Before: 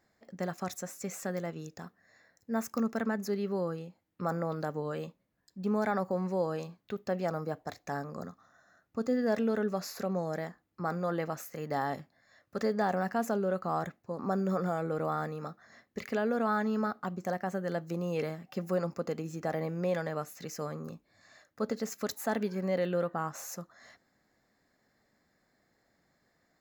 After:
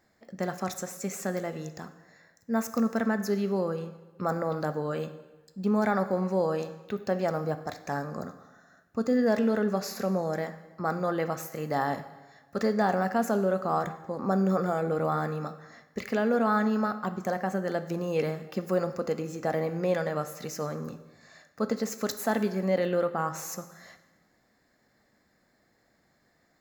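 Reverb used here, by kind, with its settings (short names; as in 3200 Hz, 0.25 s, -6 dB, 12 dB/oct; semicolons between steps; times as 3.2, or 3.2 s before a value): plate-style reverb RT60 1.2 s, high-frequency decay 0.85×, DRR 10 dB; gain +4 dB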